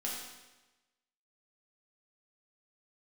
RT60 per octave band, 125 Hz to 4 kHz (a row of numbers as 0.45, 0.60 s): 1.1, 1.1, 1.1, 1.1, 1.1, 1.0 s